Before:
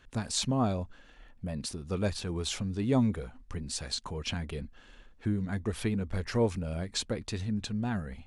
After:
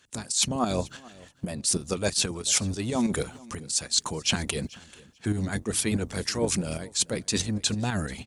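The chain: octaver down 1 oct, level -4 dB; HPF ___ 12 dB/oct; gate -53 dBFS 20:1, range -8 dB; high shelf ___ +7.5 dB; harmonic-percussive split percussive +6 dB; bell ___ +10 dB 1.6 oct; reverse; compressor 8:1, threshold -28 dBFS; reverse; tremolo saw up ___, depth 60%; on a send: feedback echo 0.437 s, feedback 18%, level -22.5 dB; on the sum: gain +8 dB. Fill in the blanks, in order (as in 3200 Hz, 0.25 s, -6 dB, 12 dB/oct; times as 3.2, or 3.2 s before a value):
110 Hz, 4000 Hz, 7600 Hz, 6.2 Hz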